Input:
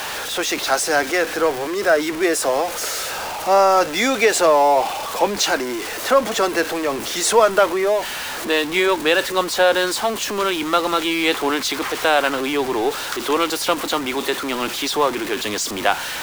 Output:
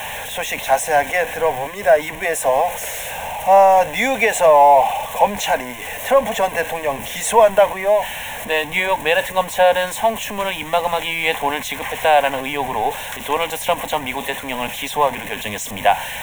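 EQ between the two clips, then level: dynamic bell 870 Hz, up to +4 dB, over -27 dBFS, Q 1.2; bass shelf 270 Hz +5.5 dB; static phaser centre 1.3 kHz, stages 6; +2.0 dB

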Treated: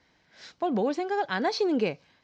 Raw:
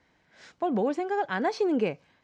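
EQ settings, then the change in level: peaking EQ 5.1 kHz +10 dB 1.3 oct; dynamic bell 4 kHz, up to +5 dB, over -55 dBFS, Q 5.7; distance through air 62 m; 0.0 dB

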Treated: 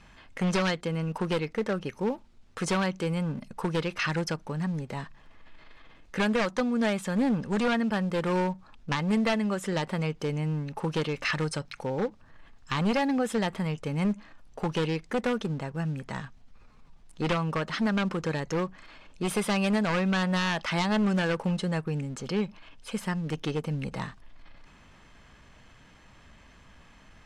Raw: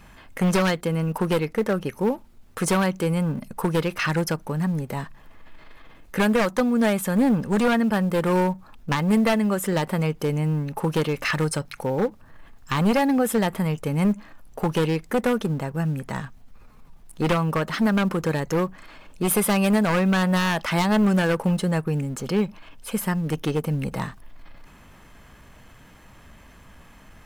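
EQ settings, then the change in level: distance through air 120 m; treble shelf 3.2 kHz +12 dB; -6.0 dB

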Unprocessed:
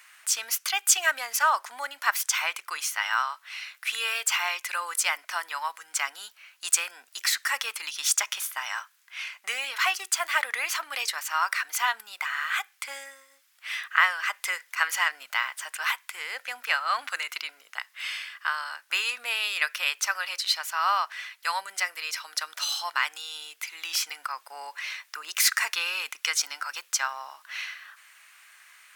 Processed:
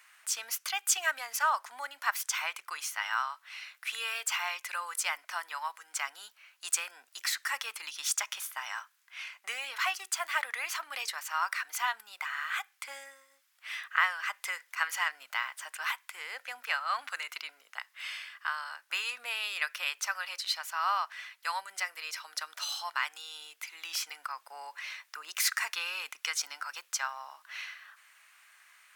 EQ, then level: steep high-pass 170 Hz; peaking EQ 820 Hz +3 dB 1.9 oct; dynamic bell 410 Hz, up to -4 dB, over -41 dBFS, Q 1.1; -7.0 dB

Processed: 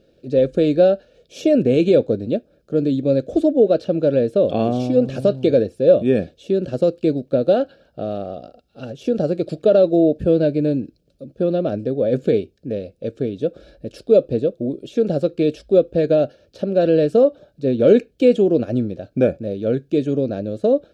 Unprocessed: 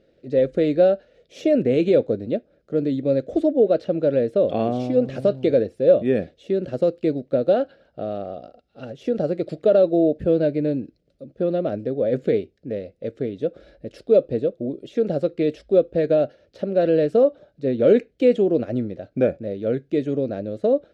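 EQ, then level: Butterworth band-stop 2 kHz, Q 5.6; bass shelf 420 Hz +5.5 dB; treble shelf 3.3 kHz +9.5 dB; 0.0 dB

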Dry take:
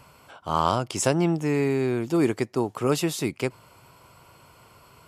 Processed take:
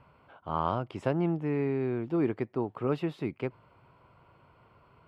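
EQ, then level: distance through air 460 m; -5.0 dB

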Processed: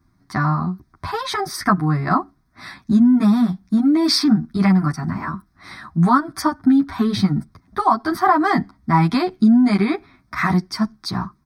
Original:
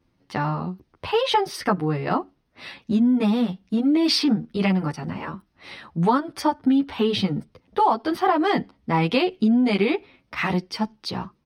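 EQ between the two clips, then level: Butterworth band-stop 870 Hz, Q 7.8; static phaser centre 1.2 kHz, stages 4; +8.5 dB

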